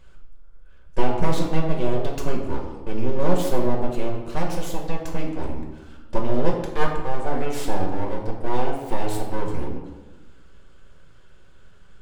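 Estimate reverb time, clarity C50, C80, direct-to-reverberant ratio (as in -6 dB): 1.2 s, 5.0 dB, 7.0 dB, -1.0 dB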